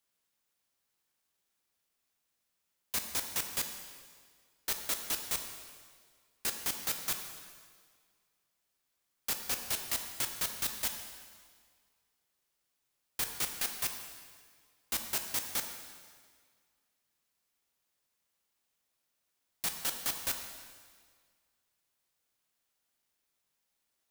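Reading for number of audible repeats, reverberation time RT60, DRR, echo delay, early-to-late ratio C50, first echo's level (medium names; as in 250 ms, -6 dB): no echo, 1.8 s, 4.5 dB, no echo, 6.5 dB, no echo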